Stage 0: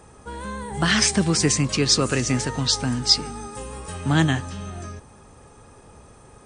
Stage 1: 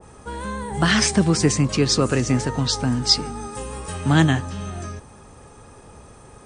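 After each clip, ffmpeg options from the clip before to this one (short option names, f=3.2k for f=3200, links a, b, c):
-af "adynamicequalizer=threshold=0.0126:dfrequency=1500:dqfactor=0.7:tfrequency=1500:tqfactor=0.7:attack=5:release=100:ratio=0.375:range=3.5:mode=cutabove:tftype=highshelf,volume=3dB"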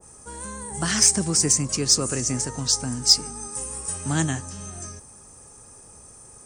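-af "aexciter=amount=6.4:drive=6:freq=5.3k,volume=-8dB"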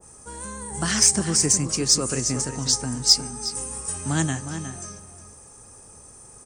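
-filter_complex "[0:a]asplit=2[a][b];[b]adelay=361.5,volume=-9dB,highshelf=f=4k:g=-8.13[c];[a][c]amix=inputs=2:normalize=0"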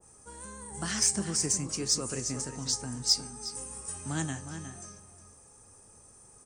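-af "flanger=delay=8.3:depth=3.9:regen=79:speed=1:shape=triangular,volume=-4.5dB"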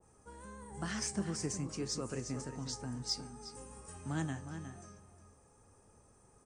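-af "lowpass=f=2k:p=1,volume=-3dB"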